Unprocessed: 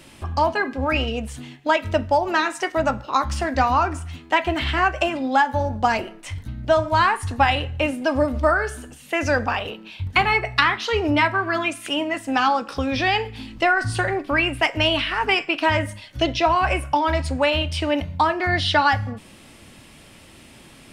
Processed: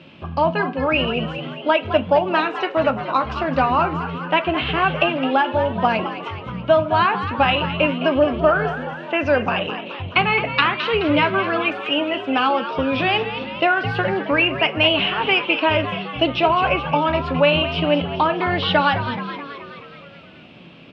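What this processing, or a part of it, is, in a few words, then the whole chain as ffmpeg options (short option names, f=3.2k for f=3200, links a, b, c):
frequency-shifting delay pedal into a guitar cabinet: -filter_complex "[0:a]asplit=8[a][b][c][d][e][f][g][h];[b]adelay=213,afreqshift=90,volume=-10.5dB[i];[c]adelay=426,afreqshift=180,volume=-14.8dB[j];[d]adelay=639,afreqshift=270,volume=-19.1dB[k];[e]adelay=852,afreqshift=360,volume=-23.4dB[l];[f]adelay=1065,afreqshift=450,volume=-27.7dB[m];[g]adelay=1278,afreqshift=540,volume=-32dB[n];[h]adelay=1491,afreqshift=630,volume=-36.3dB[o];[a][i][j][k][l][m][n][o]amix=inputs=8:normalize=0,highpass=110,equalizer=f=170:t=q:w=4:g=9,equalizer=f=560:t=q:w=4:g=4,equalizer=f=830:t=q:w=4:g=-3,equalizer=f=1.9k:t=q:w=4:g=-7,equalizer=f=2.7k:t=q:w=4:g=5,lowpass=f=3.5k:w=0.5412,lowpass=f=3.5k:w=1.3066,volume=1.5dB"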